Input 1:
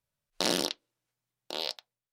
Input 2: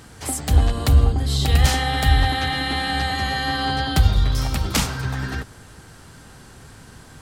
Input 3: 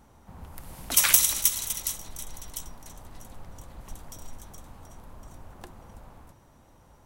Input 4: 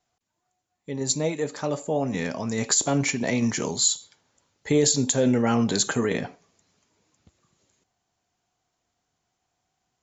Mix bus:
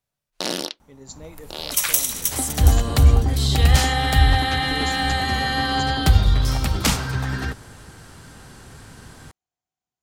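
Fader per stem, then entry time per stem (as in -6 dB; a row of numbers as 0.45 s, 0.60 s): +2.0 dB, +1.0 dB, -0.5 dB, -15.5 dB; 0.00 s, 2.10 s, 0.80 s, 0.00 s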